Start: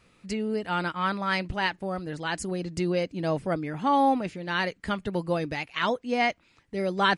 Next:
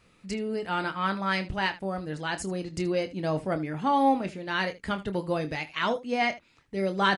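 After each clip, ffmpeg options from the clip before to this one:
-af "aecho=1:1:26|77:0.316|0.133,acontrast=47,volume=-7dB"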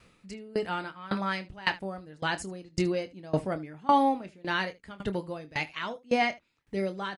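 -af "aeval=exprs='val(0)*pow(10,-23*if(lt(mod(1.8*n/s,1),2*abs(1.8)/1000),1-mod(1.8*n/s,1)/(2*abs(1.8)/1000),(mod(1.8*n/s,1)-2*abs(1.8)/1000)/(1-2*abs(1.8)/1000))/20)':c=same,volume=4.5dB"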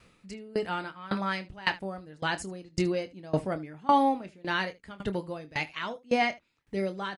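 -af anull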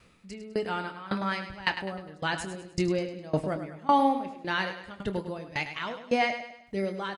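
-af "aecho=1:1:102|204|306|408:0.316|0.133|0.0558|0.0234"

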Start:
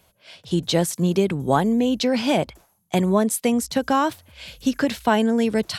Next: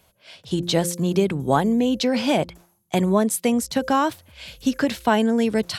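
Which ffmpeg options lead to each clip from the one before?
-af "bandreject=f=174.2:t=h:w=4,bandreject=f=348.4:t=h:w=4,bandreject=f=522.6:t=h:w=4"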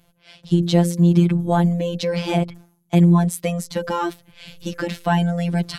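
-af "afftfilt=real='hypot(re,im)*cos(PI*b)':imag='0':win_size=1024:overlap=0.75,bass=f=250:g=10,treble=f=4k:g=-3,volume=1.5dB"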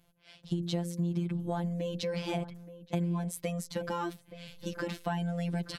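-filter_complex "[0:a]acompressor=threshold=-20dB:ratio=5,asplit=2[a][b];[b]adelay=874.6,volume=-14dB,highshelf=f=4k:g=-19.7[c];[a][c]amix=inputs=2:normalize=0,volume=-9dB"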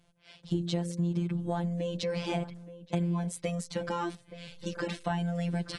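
-af "volume=1.5dB" -ar 22050 -c:a aac -b:a 32k

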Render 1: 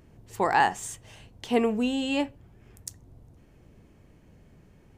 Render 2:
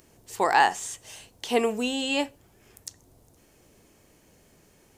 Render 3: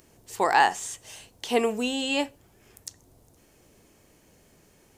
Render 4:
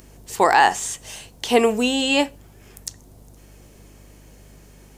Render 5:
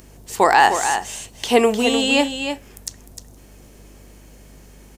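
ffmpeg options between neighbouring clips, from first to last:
-filter_complex "[0:a]bass=f=250:g=-11,treble=f=4k:g=13,acrossover=split=4600[a][b];[b]acompressor=threshold=-41dB:ratio=4:attack=1:release=60[c];[a][c]amix=inputs=2:normalize=0,volume=2dB"
-af anull
-af "aeval=exprs='val(0)+0.00178*(sin(2*PI*50*n/s)+sin(2*PI*2*50*n/s)/2+sin(2*PI*3*50*n/s)/3+sin(2*PI*4*50*n/s)/4+sin(2*PI*5*50*n/s)/5)':c=same,alimiter=level_in=9.5dB:limit=-1dB:release=50:level=0:latency=1,volume=-2dB"
-af "aecho=1:1:304:0.398,volume=1.5dB"

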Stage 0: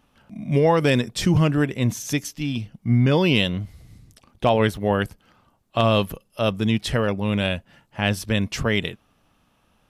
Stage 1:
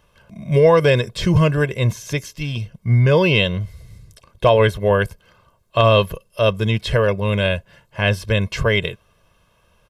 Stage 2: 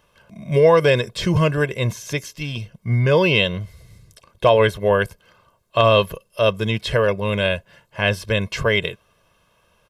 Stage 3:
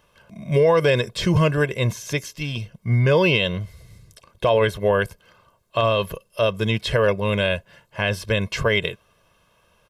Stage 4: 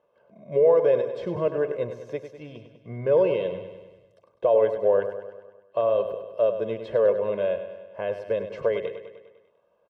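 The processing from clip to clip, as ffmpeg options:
-filter_complex "[0:a]acrossover=split=4200[a][b];[b]acompressor=threshold=-41dB:ratio=4:attack=1:release=60[c];[a][c]amix=inputs=2:normalize=0,aecho=1:1:1.9:0.76,volume=2.5dB"
-af "lowshelf=f=130:g=-8"
-af "alimiter=limit=-8.5dB:level=0:latency=1:release=74"
-filter_complex "[0:a]bandpass=f=530:t=q:w=2.2:csg=0,asplit=2[a][b];[b]aecho=0:1:100|200|300|400|500|600|700:0.316|0.187|0.11|0.0649|0.0383|0.0226|0.0133[c];[a][c]amix=inputs=2:normalize=0"

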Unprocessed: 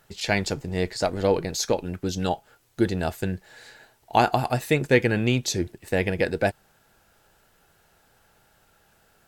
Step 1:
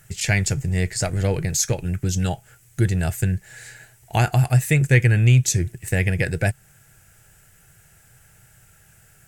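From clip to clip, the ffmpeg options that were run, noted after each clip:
-filter_complex "[0:a]equalizer=f=125:t=o:w=1:g=11,equalizer=f=250:t=o:w=1:g=-11,equalizer=f=500:t=o:w=1:g=-6,equalizer=f=1k:t=o:w=1:g=-12,equalizer=f=2k:t=o:w=1:g=4,equalizer=f=4k:t=o:w=1:g=-11,equalizer=f=8k:t=o:w=1:g=8,asplit=2[a][b];[b]acompressor=threshold=-31dB:ratio=6,volume=-1dB[c];[a][c]amix=inputs=2:normalize=0,volume=3dB"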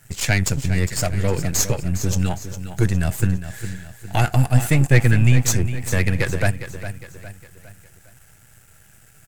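-filter_complex "[0:a]aeval=exprs='if(lt(val(0),0),0.251*val(0),val(0))':c=same,asplit=2[a][b];[b]aecho=0:1:408|816|1224|1632:0.266|0.117|0.0515|0.0227[c];[a][c]amix=inputs=2:normalize=0,volume=4.5dB"

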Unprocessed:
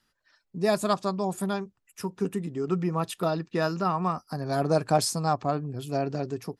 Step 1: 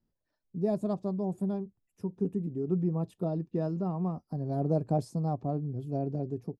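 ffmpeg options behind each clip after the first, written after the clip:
-af "firequalizer=gain_entry='entry(150,0);entry(730,-9);entry(1300,-24)':delay=0.05:min_phase=1"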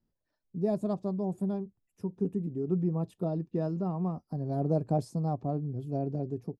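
-af anull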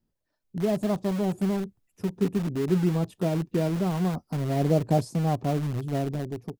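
-filter_complex "[0:a]dynaudnorm=f=120:g=11:m=5.5dB,asplit=2[a][b];[b]aeval=exprs='(mod(22.4*val(0)+1,2)-1)/22.4':c=same,volume=-10.5dB[c];[a][c]amix=inputs=2:normalize=0"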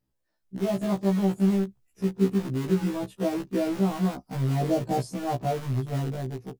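-af "afftfilt=real='re*1.73*eq(mod(b,3),0)':imag='im*1.73*eq(mod(b,3),0)':win_size=2048:overlap=0.75,volume=2.5dB"

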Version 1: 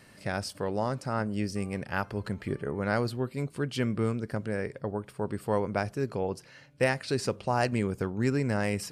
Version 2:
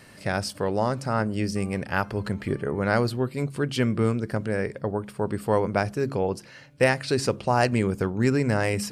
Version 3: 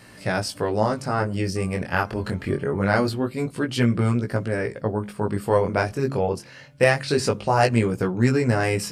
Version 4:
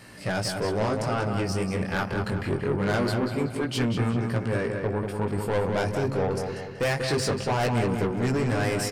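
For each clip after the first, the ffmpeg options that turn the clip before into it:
-af "bandreject=f=68.48:t=h:w=4,bandreject=f=136.96:t=h:w=4,bandreject=f=205.44:t=h:w=4,bandreject=f=273.92:t=h:w=4,bandreject=f=342.4:t=h:w=4,volume=5.5dB"
-af "flanger=delay=16.5:depth=6.3:speed=0.24,volume=5.5dB"
-filter_complex "[0:a]asoftclip=type=tanh:threshold=-21.5dB,asplit=2[a][b];[b]adelay=189,lowpass=f=3.6k:p=1,volume=-5dB,asplit=2[c][d];[d]adelay=189,lowpass=f=3.6k:p=1,volume=0.49,asplit=2[e][f];[f]adelay=189,lowpass=f=3.6k:p=1,volume=0.49,asplit=2[g][h];[h]adelay=189,lowpass=f=3.6k:p=1,volume=0.49,asplit=2[i][j];[j]adelay=189,lowpass=f=3.6k:p=1,volume=0.49,asplit=2[k][l];[l]adelay=189,lowpass=f=3.6k:p=1,volume=0.49[m];[a][c][e][g][i][k][m]amix=inputs=7:normalize=0"

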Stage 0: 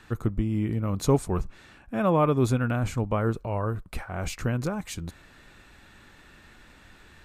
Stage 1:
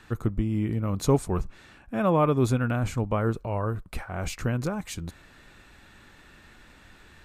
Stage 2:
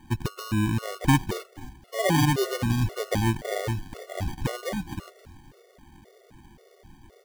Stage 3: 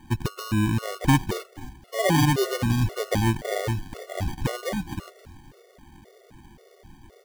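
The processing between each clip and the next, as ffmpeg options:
-af anull
-filter_complex "[0:a]acrusher=samples=33:mix=1:aa=0.000001,asplit=4[a][b][c][d];[b]adelay=264,afreqshift=-82,volume=-17dB[e];[c]adelay=528,afreqshift=-164,volume=-26.6dB[f];[d]adelay=792,afreqshift=-246,volume=-36.3dB[g];[a][e][f][g]amix=inputs=4:normalize=0,afftfilt=real='re*gt(sin(2*PI*1.9*pts/sr)*(1-2*mod(floor(b*sr/1024/370),2)),0)':imag='im*gt(sin(2*PI*1.9*pts/sr)*(1-2*mod(floor(b*sr/1024/370),2)),0)':win_size=1024:overlap=0.75,volume=3dB"
-af "asoftclip=type=tanh:threshold=-8.5dB,volume=2dB"

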